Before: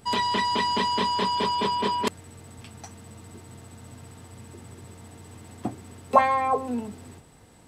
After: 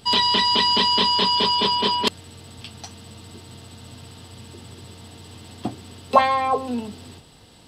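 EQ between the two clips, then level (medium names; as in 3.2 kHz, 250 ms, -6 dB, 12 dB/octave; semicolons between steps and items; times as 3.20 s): high-order bell 3.8 kHz +10 dB 1.1 oct; +2.5 dB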